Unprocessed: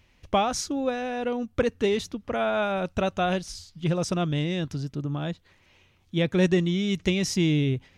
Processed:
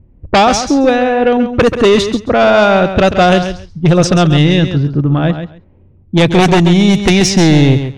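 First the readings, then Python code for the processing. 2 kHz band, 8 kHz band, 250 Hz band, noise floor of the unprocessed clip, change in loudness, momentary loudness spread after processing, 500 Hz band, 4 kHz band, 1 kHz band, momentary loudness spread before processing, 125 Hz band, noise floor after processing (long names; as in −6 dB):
+16.5 dB, +14.0 dB, +16.0 dB, −62 dBFS, +16.0 dB, 6 LU, +16.0 dB, +16.0 dB, +16.5 dB, 9 LU, +16.0 dB, −45 dBFS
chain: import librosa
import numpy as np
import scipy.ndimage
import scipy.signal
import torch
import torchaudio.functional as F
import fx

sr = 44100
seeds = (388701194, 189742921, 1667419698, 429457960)

y = fx.env_lowpass(x, sr, base_hz=300.0, full_db=-20.0)
y = fx.fold_sine(y, sr, drive_db=8, ceiling_db=-10.5)
y = fx.echo_feedback(y, sr, ms=135, feedback_pct=16, wet_db=-9.5)
y = F.gain(torch.from_numpy(y), 6.5).numpy()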